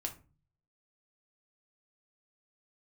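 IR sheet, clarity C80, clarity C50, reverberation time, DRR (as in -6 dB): 19.5 dB, 13.5 dB, 0.35 s, 2.5 dB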